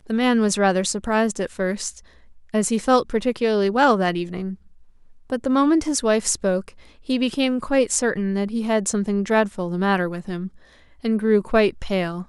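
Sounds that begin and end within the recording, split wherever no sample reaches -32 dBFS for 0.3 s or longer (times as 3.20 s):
2.54–4.54 s
5.30–6.69 s
7.09–10.48 s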